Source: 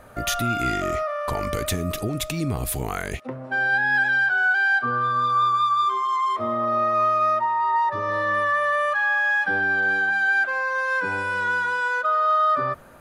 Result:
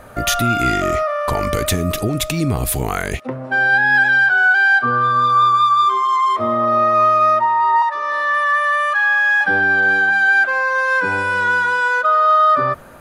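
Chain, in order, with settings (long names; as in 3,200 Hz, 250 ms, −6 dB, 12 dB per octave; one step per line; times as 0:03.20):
0:07.82–0:09.41: high-pass filter 930 Hz 12 dB per octave
level +7 dB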